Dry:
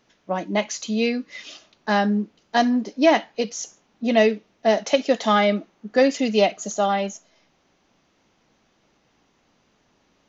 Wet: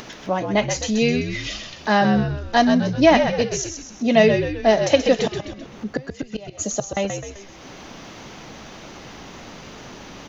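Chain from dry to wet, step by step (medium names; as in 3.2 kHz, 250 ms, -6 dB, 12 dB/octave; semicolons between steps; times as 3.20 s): 5.23–6.97 s: inverted gate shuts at -13 dBFS, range -30 dB; upward compressor, threshold -24 dBFS; frequency-shifting echo 129 ms, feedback 49%, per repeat -65 Hz, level -7 dB; trim +2.5 dB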